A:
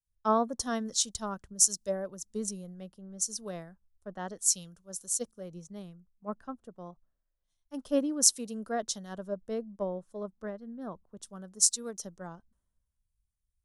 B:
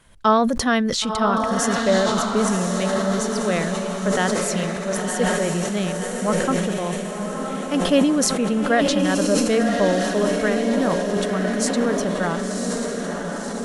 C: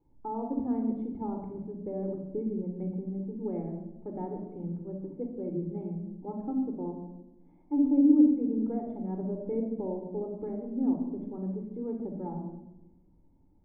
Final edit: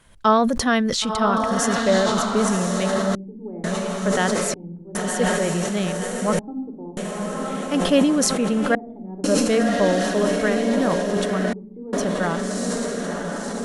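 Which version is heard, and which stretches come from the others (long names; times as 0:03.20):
B
0:03.15–0:03.64: punch in from C
0:04.54–0:04.95: punch in from C
0:06.39–0:06.97: punch in from C
0:08.75–0:09.24: punch in from C
0:11.53–0:11.93: punch in from C
not used: A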